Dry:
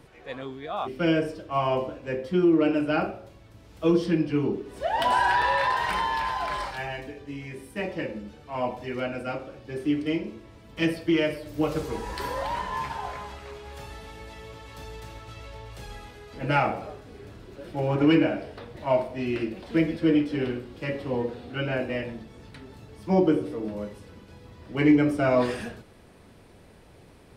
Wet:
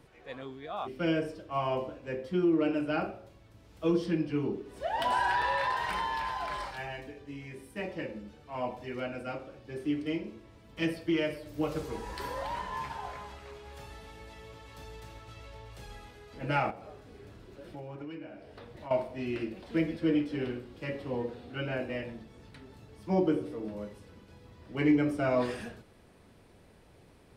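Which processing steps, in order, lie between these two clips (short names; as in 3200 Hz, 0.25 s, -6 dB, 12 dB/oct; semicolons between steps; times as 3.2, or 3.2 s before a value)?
16.7–18.91 compressor 5:1, threshold -36 dBFS, peak gain reduction 18 dB; gain -6 dB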